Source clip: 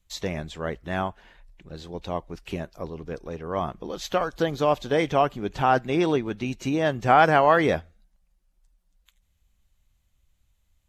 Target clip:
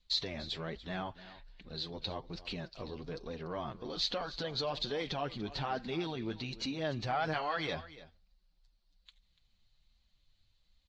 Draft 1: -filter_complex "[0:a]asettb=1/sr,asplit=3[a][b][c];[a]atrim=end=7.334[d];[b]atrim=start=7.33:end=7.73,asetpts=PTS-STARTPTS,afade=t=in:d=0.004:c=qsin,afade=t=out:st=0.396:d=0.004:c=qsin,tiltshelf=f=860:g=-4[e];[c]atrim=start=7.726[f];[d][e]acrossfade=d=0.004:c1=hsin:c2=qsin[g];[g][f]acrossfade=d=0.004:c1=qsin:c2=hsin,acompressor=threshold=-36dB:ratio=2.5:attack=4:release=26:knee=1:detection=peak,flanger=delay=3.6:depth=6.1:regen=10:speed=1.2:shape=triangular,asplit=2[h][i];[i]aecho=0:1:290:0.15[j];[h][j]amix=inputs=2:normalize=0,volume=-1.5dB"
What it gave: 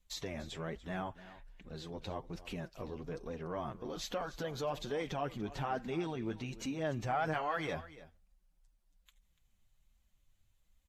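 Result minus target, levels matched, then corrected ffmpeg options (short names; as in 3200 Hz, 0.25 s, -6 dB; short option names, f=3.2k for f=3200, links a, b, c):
4000 Hz band -8.5 dB
-filter_complex "[0:a]asettb=1/sr,asplit=3[a][b][c];[a]atrim=end=7.334[d];[b]atrim=start=7.33:end=7.73,asetpts=PTS-STARTPTS,afade=t=in:d=0.004:c=qsin,afade=t=out:st=0.396:d=0.004:c=qsin,tiltshelf=f=860:g=-4[e];[c]atrim=start=7.726[f];[d][e]acrossfade=d=0.004:c1=hsin:c2=qsin[g];[g][f]acrossfade=d=0.004:c1=qsin:c2=hsin,acompressor=threshold=-36dB:ratio=2.5:attack=4:release=26:knee=1:detection=peak,lowpass=f=4.3k:t=q:w=5.8,flanger=delay=3.6:depth=6.1:regen=10:speed=1.2:shape=triangular,asplit=2[h][i];[i]aecho=0:1:290:0.15[j];[h][j]amix=inputs=2:normalize=0,volume=-1.5dB"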